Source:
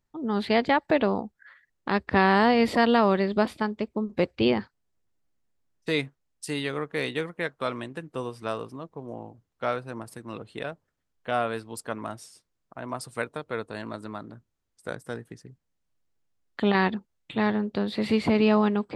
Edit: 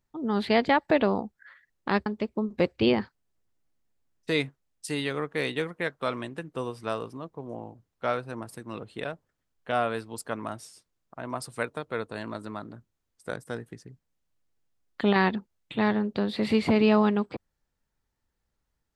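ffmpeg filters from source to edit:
-filter_complex "[0:a]asplit=2[a][b];[a]atrim=end=2.062[c];[b]atrim=start=3.648[d];[c][d]acrossfade=d=0.004:c1=hsin:c2=hsin"

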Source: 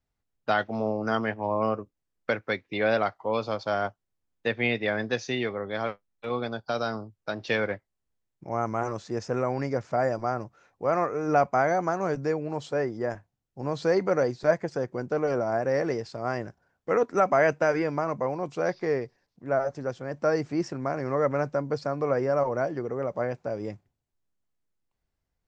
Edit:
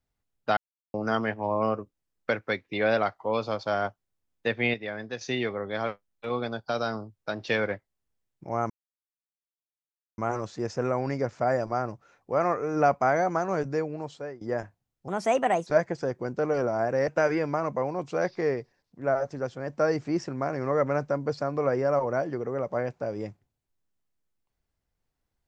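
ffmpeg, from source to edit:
-filter_complex "[0:a]asplit=10[a][b][c][d][e][f][g][h][i][j];[a]atrim=end=0.57,asetpts=PTS-STARTPTS,afade=t=out:st=0.566:d=0.004:c=hsin[k];[b]atrim=start=0.57:end=0.94,asetpts=PTS-STARTPTS,volume=0[l];[c]atrim=start=0.94:end=4.742,asetpts=PTS-STARTPTS,afade=t=in:d=0.004:c=hsin[m];[d]atrim=start=4.738:end=5.212,asetpts=PTS-STARTPTS,volume=-7.5dB[n];[e]atrim=start=5.208:end=8.7,asetpts=PTS-STARTPTS,afade=t=out:st=3.488:d=0.004:c=hsin,apad=pad_dur=1.48[o];[f]atrim=start=8.7:end=12.93,asetpts=PTS-STARTPTS,afade=t=in:d=0.004:c=hsin,afade=t=out:st=3.3:d=0.93:c=qsin:silence=0.105925[p];[g]atrim=start=12.93:end=13.604,asetpts=PTS-STARTPTS,afade=t=in:d=0.004:c=hsin:silence=0.105925[q];[h]atrim=start=13.6:end=14.4,asetpts=PTS-STARTPTS,asetrate=59976,aresample=44100,atrim=end_sample=25941,asetpts=PTS-STARTPTS[r];[i]atrim=start=14.396:end=15.812[s];[j]atrim=start=17.518[t];[k][l][m]concat=n=3:v=0:a=1[u];[u][n]acrossfade=d=0.004:c1=hsin:c2=hsin[v];[o][p][q]concat=n=3:v=0:a=1[w];[v][w]acrossfade=d=0.004:c1=hsin:c2=hsin[x];[x][r]acrossfade=d=0.004:c1=hsin:c2=hsin[y];[y][s]acrossfade=d=0.004:c1=hsin:c2=hsin[z];[z][t]acrossfade=d=0.004:c1=hsin:c2=hsin"

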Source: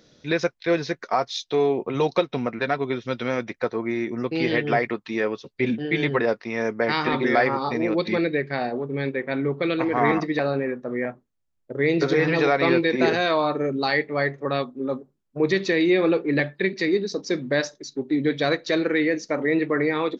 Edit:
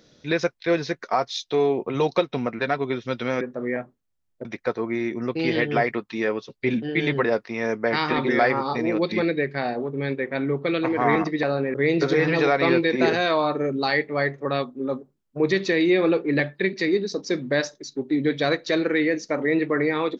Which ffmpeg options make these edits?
-filter_complex "[0:a]asplit=4[a][b][c][d];[a]atrim=end=3.412[e];[b]atrim=start=10.698:end=11.742[f];[c]atrim=start=3.408:end=10.702[g];[d]atrim=start=11.738[h];[e][f]acrossfade=d=0.004:c1=hsin:c2=hsin[i];[i][g]acrossfade=d=0.004:c1=hsin:c2=hsin[j];[j][h]acrossfade=d=0.004:c1=hsin:c2=hsin"

